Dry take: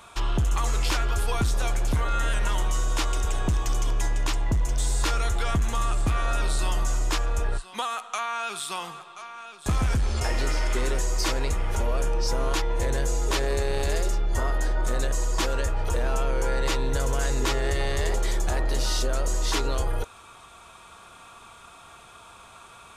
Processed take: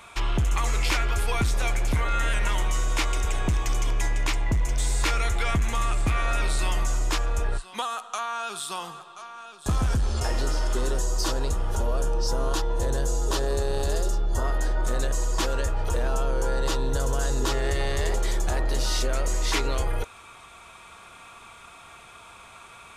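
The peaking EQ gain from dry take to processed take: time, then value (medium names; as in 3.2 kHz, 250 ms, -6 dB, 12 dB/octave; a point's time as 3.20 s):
peaking EQ 2.2 kHz 0.46 oct
+8 dB
from 6.86 s +1 dB
from 7.82 s -8 dB
from 10.40 s -14.5 dB
from 14.44 s -3.5 dB
from 16.08 s -11 dB
from 17.52 s -1 dB
from 18.93 s +7 dB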